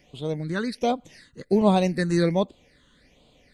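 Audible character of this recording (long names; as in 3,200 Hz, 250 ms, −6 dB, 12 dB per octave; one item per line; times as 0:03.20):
phaser sweep stages 8, 1.3 Hz, lowest notch 680–1,800 Hz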